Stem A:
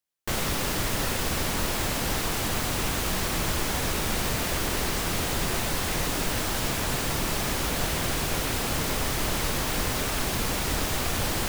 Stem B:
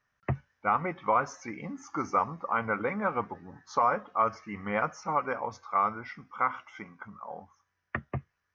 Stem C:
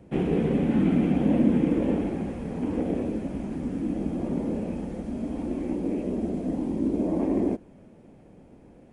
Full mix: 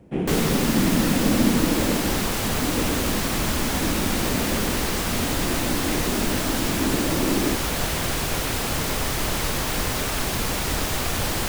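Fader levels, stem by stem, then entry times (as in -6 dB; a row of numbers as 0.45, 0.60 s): +2.5 dB, off, +0.5 dB; 0.00 s, off, 0.00 s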